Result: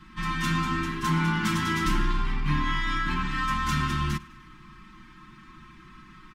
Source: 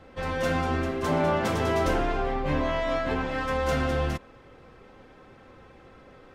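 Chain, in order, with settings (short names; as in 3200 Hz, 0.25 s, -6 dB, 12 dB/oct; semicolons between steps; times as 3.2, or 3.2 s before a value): elliptic band-stop 310–990 Hz, stop band 40 dB; comb 5.5 ms, depth 92%; in parallel at -8 dB: soft clip -29 dBFS, distortion -10 dB; on the sum: feedback echo 0.101 s, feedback 59%, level -23 dB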